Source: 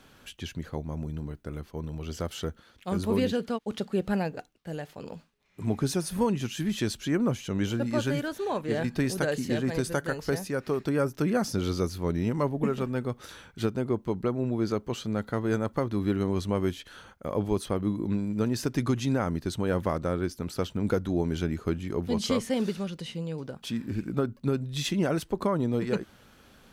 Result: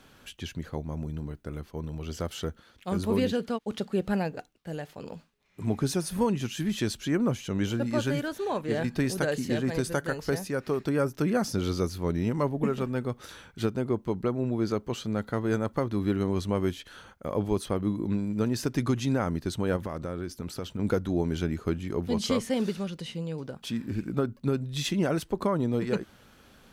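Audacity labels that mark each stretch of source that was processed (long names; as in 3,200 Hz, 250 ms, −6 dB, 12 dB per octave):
19.760000	20.790000	downward compressor, threshold −29 dBFS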